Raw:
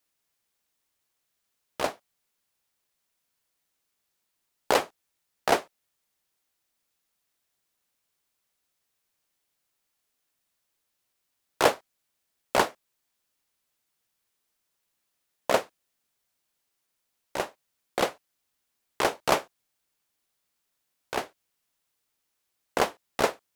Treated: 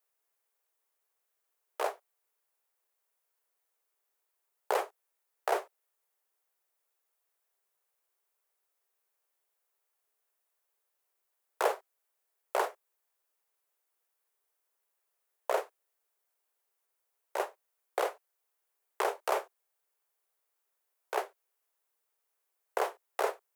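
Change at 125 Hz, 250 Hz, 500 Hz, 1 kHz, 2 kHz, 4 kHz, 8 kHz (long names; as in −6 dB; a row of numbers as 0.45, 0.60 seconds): below −35 dB, −14.0 dB, −5.5 dB, −5.0 dB, −8.0 dB, −12.5 dB, −10.0 dB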